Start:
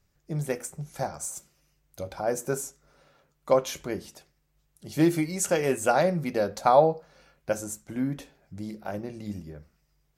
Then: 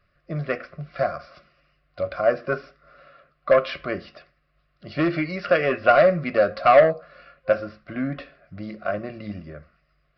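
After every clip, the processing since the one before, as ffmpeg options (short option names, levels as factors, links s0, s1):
-af "aresample=11025,asoftclip=type=tanh:threshold=0.126,aresample=44100,superequalizer=8b=2.82:9b=0.282:10b=3.98:11b=2.82:12b=2.24,volume=1.26"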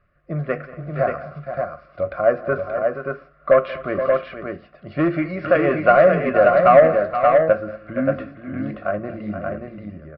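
-af "lowpass=1800,aecho=1:1:185|232|474|579:0.112|0.1|0.316|0.596,volume=1.41"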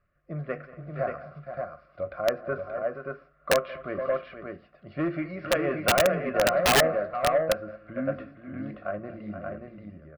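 -af "aeval=exprs='(mod(1.88*val(0)+1,2)-1)/1.88':c=same,volume=0.355"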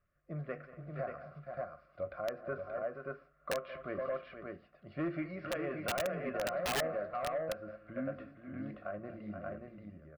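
-af "alimiter=limit=0.0794:level=0:latency=1:release=168,volume=0.473"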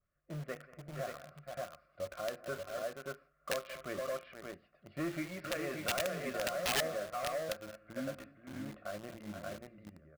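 -filter_complex "[0:a]asplit=2[s0][s1];[s1]acrusher=bits=6:mix=0:aa=0.000001,volume=0.501[s2];[s0][s2]amix=inputs=2:normalize=0,adynamicequalizer=threshold=0.00398:dfrequency=1800:dqfactor=0.7:tfrequency=1800:tqfactor=0.7:attack=5:release=100:ratio=0.375:range=3:mode=boostabove:tftype=highshelf,volume=0.562"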